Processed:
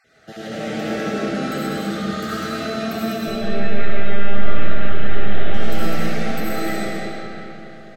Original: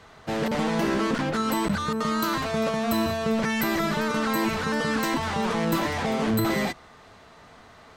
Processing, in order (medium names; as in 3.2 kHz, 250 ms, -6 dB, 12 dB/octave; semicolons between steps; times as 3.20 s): random holes in the spectrogram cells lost 25%; high-pass 91 Hz; delay 201 ms -4 dB; 3.27–5.54 s: monotone LPC vocoder at 8 kHz 200 Hz; Butterworth band-stop 980 Hz, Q 2.3; algorithmic reverb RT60 3.7 s, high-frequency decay 0.7×, pre-delay 40 ms, DRR -9 dB; trim -7 dB